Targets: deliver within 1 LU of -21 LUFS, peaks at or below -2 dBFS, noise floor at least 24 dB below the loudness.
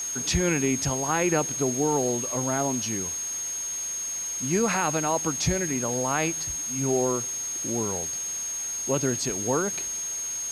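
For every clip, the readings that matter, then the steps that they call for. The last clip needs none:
steady tone 6500 Hz; tone level -29 dBFS; noise floor -32 dBFS; noise floor target -50 dBFS; loudness -26.0 LUFS; peak -11.0 dBFS; loudness target -21.0 LUFS
-> notch 6500 Hz, Q 30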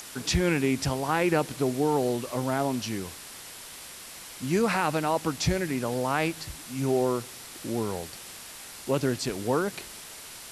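steady tone none; noise floor -44 dBFS; noise floor target -52 dBFS
-> noise print and reduce 8 dB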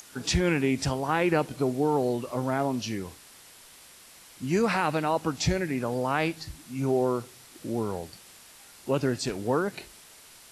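noise floor -52 dBFS; loudness -28.0 LUFS; peak -12.0 dBFS; loudness target -21.0 LUFS
-> gain +7 dB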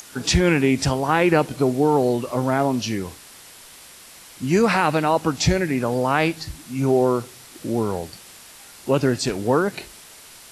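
loudness -21.0 LUFS; peak -5.0 dBFS; noise floor -45 dBFS

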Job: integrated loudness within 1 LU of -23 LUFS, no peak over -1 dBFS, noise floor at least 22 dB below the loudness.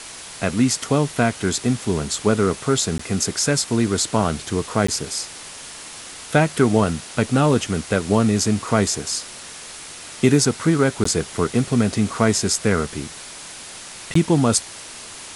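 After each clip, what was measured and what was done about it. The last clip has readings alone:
dropouts 4; longest dropout 14 ms; noise floor -37 dBFS; noise floor target -42 dBFS; loudness -20.0 LUFS; peak -2.0 dBFS; loudness target -23.0 LUFS
-> interpolate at 2.98/4.87/11.04/14.14, 14 ms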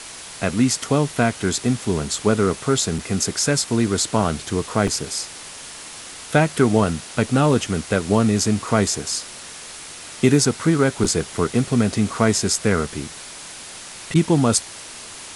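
dropouts 0; noise floor -37 dBFS; noise floor target -42 dBFS
-> denoiser 6 dB, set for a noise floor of -37 dBFS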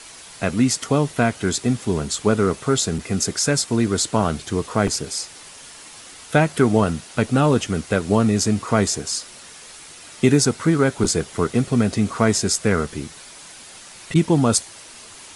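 noise floor -42 dBFS; noise floor target -43 dBFS
-> denoiser 6 dB, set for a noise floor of -42 dBFS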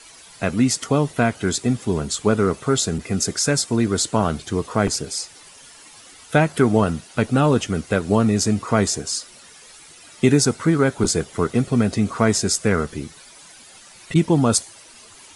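noise floor -46 dBFS; loudness -20.5 LUFS; peak -2.0 dBFS; loudness target -23.0 LUFS
-> gain -2.5 dB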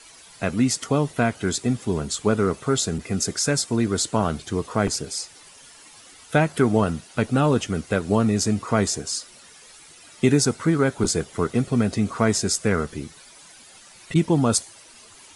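loudness -23.0 LUFS; peak -4.5 dBFS; noise floor -48 dBFS

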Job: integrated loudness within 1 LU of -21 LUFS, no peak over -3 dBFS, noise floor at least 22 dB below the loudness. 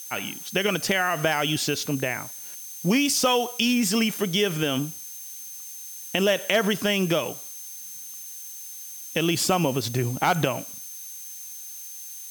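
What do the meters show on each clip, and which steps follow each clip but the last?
steady tone 6300 Hz; tone level -41 dBFS; noise floor -39 dBFS; noise floor target -46 dBFS; loudness -24.0 LUFS; peak -6.5 dBFS; loudness target -21.0 LUFS
-> notch 6300 Hz, Q 30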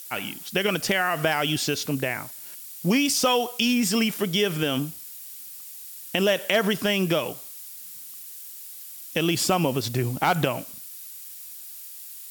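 steady tone none; noise floor -41 dBFS; noise floor target -46 dBFS
-> noise print and reduce 6 dB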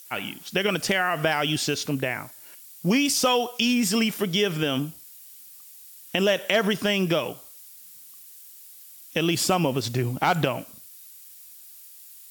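noise floor -47 dBFS; loudness -24.0 LUFS; peak -6.5 dBFS; loudness target -21.0 LUFS
-> gain +3 dB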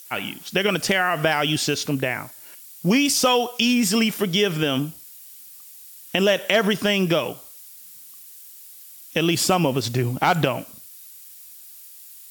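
loudness -21.0 LUFS; peak -3.5 dBFS; noise floor -44 dBFS

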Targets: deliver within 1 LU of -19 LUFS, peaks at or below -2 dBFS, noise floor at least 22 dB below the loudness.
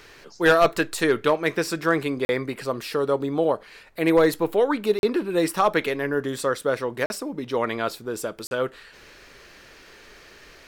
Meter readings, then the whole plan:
dropouts 4; longest dropout 41 ms; loudness -23.5 LUFS; peak -9.5 dBFS; loudness target -19.0 LUFS
-> interpolate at 2.25/4.99/7.06/8.47, 41 ms; gain +4.5 dB

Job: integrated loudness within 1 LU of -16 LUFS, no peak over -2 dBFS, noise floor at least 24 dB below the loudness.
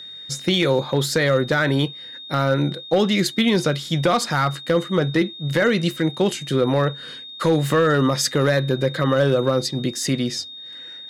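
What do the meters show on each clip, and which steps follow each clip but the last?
clipped 1.0%; flat tops at -10.0 dBFS; steady tone 3700 Hz; tone level -35 dBFS; loudness -20.5 LUFS; peak -10.0 dBFS; loudness target -16.0 LUFS
-> clip repair -10 dBFS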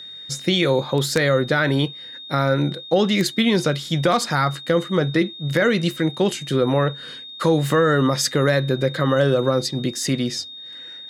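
clipped 0.0%; steady tone 3700 Hz; tone level -35 dBFS
-> notch 3700 Hz, Q 30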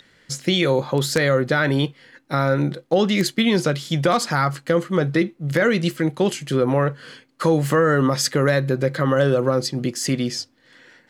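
steady tone none; loudness -20.5 LUFS; peak -1.5 dBFS; loudness target -16.0 LUFS
-> gain +4.5 dB; limiter -2 dBFS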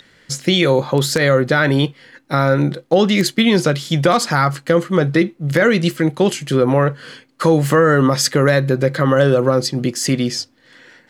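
loudness -16.0 LUFS; peak -2.0 dBFS; noise floor -53 dBFS

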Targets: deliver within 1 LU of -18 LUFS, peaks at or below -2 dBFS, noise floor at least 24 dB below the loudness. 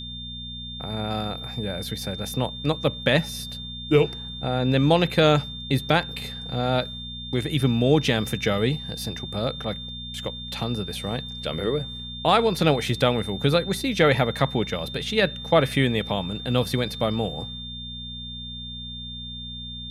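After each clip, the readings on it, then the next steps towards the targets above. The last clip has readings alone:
hum 60 Hz; harmonics up to 240 Hz; hum level -37 dBFS; steady tone 3600 Hz; tone level -35 dBFS; loudness -25.0 LUFS; peak -6.0 dBFS; loudness target -18.0 LUFS
-> de-hum 60 Hz, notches 4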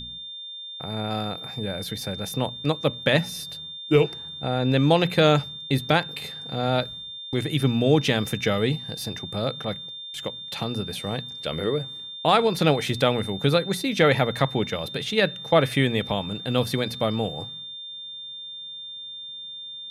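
hum none; steady tone 3600 Hz; tone level -35 dBFS
-> notch 3600 Hz, Q 30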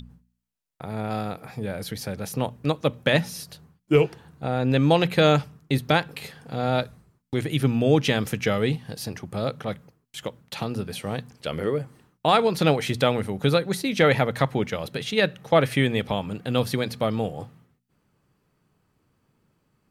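steady tone none; loudness -24.5 LUFS; peak -6.0 dBFS; loudness target -18.0 LUFS
-> gain +6.5 dB; limiter -2 dBFS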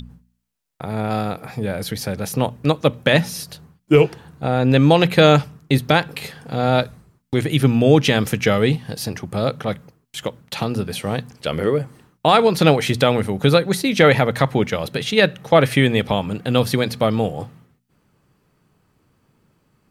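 loudness -18.5 LUFS; peak -2.0 dBFS; noise floor -67 dBFS

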